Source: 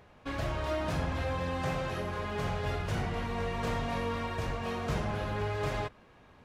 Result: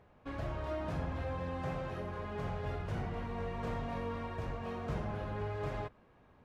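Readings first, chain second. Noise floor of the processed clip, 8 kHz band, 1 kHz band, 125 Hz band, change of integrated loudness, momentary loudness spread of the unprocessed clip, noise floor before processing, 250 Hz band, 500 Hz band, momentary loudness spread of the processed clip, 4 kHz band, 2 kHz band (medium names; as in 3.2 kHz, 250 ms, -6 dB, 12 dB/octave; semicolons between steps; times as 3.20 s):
-64 dBFS, under -10 dB, -6.0 dB, -4.5 dB, -5.5 dB, 2 LU, -58 dBFS, -4.5 dB, -5.0 dB, 3 LU, -12.0 dB, -9.0 dB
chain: treble shelf 2.3 kHz -11 dB; trim -4.5 dB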